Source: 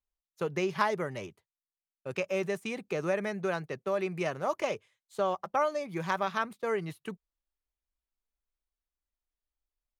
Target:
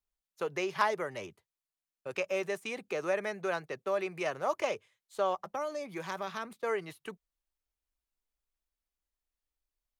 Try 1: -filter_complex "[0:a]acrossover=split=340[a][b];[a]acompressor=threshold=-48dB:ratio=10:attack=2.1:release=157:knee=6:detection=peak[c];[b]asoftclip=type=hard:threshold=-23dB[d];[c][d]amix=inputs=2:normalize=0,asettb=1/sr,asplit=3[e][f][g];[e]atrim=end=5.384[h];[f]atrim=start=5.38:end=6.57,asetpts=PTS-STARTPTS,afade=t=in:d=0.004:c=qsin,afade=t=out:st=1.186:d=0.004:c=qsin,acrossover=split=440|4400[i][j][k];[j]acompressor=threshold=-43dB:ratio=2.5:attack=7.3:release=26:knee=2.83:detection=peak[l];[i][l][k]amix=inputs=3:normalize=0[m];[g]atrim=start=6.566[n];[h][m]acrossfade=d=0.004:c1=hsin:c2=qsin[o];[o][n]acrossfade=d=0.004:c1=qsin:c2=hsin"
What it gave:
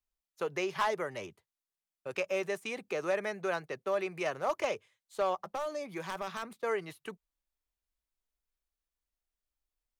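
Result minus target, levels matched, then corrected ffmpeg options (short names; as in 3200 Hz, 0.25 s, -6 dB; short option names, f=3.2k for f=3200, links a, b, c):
hard clip: distortion +18 dB
-filter_complex "[0:a]acrossover=split=340[a][b];[a]acompressor=threshold=-48dB:ratio=10:attack=2.1:release=157:knee=6:detection=peak[c];[b]asoftclip=type=hard:threshold=-15dB[d];[c][d]amix=inputs=2:normalize=0,asettb=1/sr,asplit=3[e][f][g];[e]atrim=end=5.384[h];[f]atrim=start=5.38:end=6.57,asetpts=PTS-STARTPTS,afade=t=in:d=0.004:c=qsin,afade=t=out:st=1.186:d=0.004:c=qsin,acrossover=split=440|4400[i][j][k];[j]acompressor=threshold=-43dB:ratio=2.5:attack=7.3:release=26:knee=2.83:detection=peak[l];[i][l][k]amix=inputs=3:normalize=0[m];[g]atrim=start=6.566[n];[h][m]acrossfade=d=0.004:c1=hsin:c2=qsin[o];[o][n]acrossfade=d=0.004:c1=qsin:c2=hsin"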